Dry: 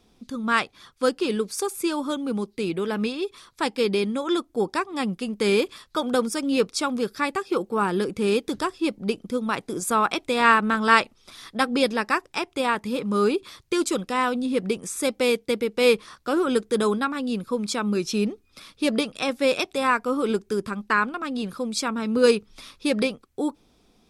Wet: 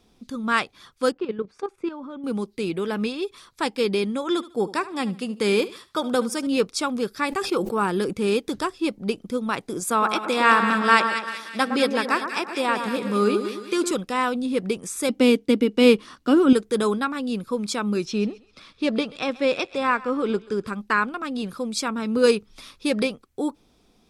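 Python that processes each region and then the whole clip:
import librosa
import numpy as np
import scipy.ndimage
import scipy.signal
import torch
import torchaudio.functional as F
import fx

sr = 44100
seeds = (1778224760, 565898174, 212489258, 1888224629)

y = fx.chain(x, sr, fx.lowpass(hz=1900.0, slope=12),
    fx.level_steps(step_db=12), at=(1.12, 2.24))
y = fx.chain(y, sr, fx.highpass(hz=67.0, slope=12),
    fx.echo_feedback(ms=74, feedback_pct=27, wet_db=-17), at=(4.3, 6.47))
y = fx.chain(y, sr, fx.high_shelf(hz=9800.0, db=4.0),
    fx.sustainer(db_per_s=69.0), at=(7.26, 8.13))
y = fx.chain(y, sr, fx.highpass(hz=170.0, slope=24),
    fx.echo_split(split_hz=1600.0, low_ms=112, high_ms=190, feedback_pct=52, wet_db=-7), at=(9.9, 13.91))
y = fx.chain(y, sr, fx.high_shelf(hz=11000.0, db=-6.5),
    fx.small_body(hz=(260.0, 2900.0), ring_ms=40, db=13), at=(15.09, 16.53))
y = fx.chain(y, sr, fx.air_absorb(metres=91.0),
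    fx.echo_thinned(ms=133, feedback_pct=31, hz=630.0, wet_db=-18), at=(18.05, 20.67))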